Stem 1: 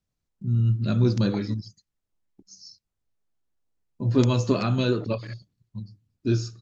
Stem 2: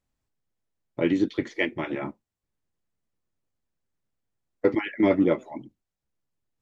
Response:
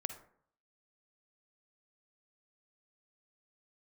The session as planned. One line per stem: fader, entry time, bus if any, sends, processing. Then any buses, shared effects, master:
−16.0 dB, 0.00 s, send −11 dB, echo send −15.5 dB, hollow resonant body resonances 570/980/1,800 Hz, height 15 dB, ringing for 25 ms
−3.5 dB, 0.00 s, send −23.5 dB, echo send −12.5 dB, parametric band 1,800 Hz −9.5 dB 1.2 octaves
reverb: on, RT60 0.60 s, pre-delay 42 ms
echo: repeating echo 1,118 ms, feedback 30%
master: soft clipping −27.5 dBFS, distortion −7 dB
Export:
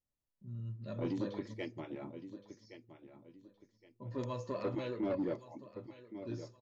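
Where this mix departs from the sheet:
stem 1 −16.0 dB → −23.0 dB
stem 2 −3.5 dB → −13.0 dB

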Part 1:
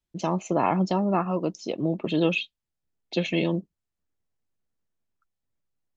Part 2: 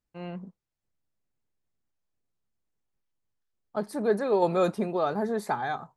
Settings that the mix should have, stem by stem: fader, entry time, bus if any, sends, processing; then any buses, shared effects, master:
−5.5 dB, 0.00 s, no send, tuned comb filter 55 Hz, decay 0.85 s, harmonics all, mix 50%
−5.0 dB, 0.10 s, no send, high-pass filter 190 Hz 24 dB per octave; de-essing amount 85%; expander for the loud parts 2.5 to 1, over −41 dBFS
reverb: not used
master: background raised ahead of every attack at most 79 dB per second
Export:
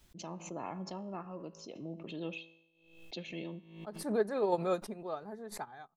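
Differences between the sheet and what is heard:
stem 1 −5.5 dB → −13.5 dB
stem 2: missing high-pass filter 190 Hz 24 dB per octave

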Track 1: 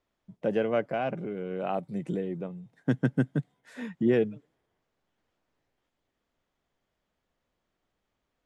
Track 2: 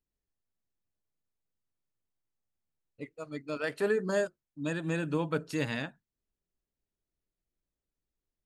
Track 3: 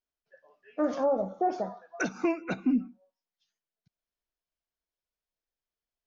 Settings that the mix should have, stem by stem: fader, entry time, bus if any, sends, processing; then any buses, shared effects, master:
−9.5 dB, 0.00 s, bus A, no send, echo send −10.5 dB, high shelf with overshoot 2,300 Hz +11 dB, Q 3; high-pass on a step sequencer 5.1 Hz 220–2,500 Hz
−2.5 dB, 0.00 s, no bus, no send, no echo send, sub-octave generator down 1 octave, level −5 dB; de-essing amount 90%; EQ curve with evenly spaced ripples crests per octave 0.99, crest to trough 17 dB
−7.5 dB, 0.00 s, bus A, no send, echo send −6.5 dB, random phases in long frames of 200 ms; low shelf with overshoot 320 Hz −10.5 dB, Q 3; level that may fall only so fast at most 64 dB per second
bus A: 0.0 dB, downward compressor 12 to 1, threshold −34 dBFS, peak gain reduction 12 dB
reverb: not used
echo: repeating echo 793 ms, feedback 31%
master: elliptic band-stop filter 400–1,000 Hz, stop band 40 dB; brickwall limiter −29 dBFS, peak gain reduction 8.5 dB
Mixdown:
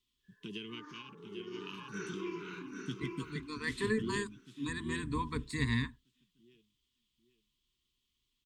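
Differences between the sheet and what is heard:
stem 1: missing high-pass on a step sequencer 5.1 Hz 220–2,500 Hz
master: missing brickwall limiter −29 dBFS, peak gain reduction 8.5 dB

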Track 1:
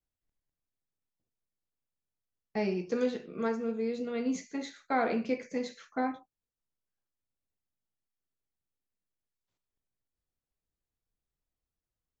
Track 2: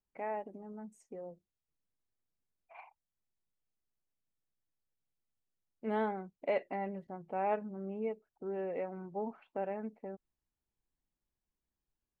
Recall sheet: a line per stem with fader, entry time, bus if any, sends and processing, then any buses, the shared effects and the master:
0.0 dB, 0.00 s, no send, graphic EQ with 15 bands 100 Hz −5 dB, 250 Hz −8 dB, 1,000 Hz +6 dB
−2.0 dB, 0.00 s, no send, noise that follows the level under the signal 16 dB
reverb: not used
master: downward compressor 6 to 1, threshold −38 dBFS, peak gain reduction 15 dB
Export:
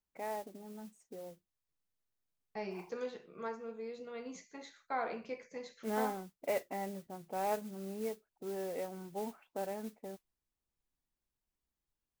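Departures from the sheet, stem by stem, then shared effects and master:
stem 1 0.0 dB → −9.0 dB
master: missing downward compressor 6 to 1, threshold −38 dBFS, peak gain reduction 15 dB

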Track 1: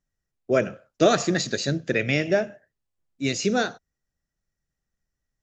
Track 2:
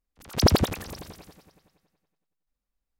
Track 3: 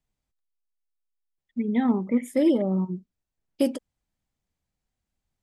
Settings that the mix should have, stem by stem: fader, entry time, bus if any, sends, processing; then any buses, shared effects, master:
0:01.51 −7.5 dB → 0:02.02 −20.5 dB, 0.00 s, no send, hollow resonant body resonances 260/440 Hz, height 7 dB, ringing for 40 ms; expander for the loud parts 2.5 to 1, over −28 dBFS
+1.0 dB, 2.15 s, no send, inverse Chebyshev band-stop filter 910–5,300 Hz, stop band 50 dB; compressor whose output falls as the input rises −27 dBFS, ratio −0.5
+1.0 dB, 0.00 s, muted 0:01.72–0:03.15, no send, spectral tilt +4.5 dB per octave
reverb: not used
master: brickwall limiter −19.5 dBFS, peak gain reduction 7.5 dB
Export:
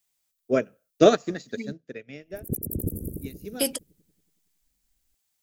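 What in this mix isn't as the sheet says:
stem 1 −7.5 dB → +1.5 dB
master: missing brickwall limiter −19.5 dBFS, peak gain reduction 7.5 dB

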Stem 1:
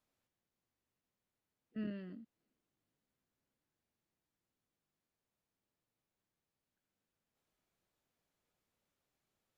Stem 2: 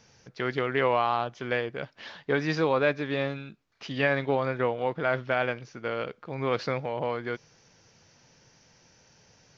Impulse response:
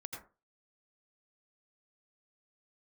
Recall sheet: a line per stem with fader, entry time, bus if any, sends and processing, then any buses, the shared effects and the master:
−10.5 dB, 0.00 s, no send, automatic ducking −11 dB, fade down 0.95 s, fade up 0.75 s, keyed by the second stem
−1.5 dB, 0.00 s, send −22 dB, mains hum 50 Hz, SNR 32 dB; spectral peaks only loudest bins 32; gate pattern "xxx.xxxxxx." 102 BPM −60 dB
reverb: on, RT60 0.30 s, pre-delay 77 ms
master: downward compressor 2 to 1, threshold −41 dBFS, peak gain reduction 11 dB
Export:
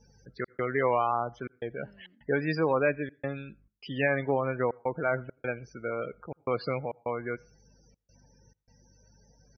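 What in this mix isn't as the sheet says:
stem 1 −10.5 dB → −2.5 dB
master: missing downward compressor 2 to 1, threshold −41 dBFS, peak gain reduction 11 dB

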